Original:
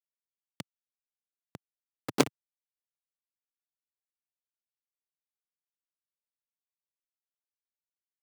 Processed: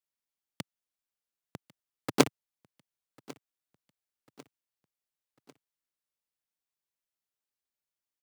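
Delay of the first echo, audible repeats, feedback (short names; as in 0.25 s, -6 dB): 1.097 s, 2, 48%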